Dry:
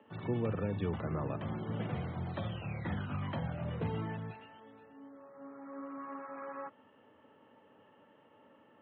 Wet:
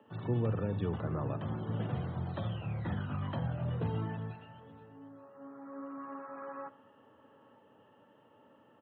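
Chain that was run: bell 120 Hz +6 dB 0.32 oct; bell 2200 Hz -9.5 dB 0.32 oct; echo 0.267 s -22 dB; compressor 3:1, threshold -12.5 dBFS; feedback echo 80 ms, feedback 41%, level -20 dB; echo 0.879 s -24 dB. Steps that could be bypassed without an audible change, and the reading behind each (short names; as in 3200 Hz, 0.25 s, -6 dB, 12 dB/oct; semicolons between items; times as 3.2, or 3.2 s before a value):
compressor, threshold -12.5 dBFS: input peak -20.5 dBFS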